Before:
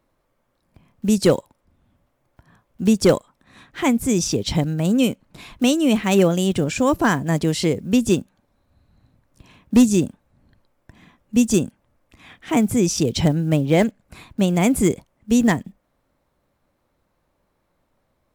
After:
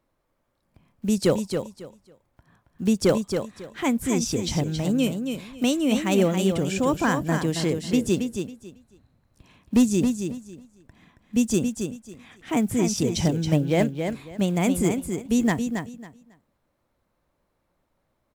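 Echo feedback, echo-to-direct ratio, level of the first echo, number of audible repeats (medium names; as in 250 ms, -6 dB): 21%, -6.5 dB, -6.5 dB, 3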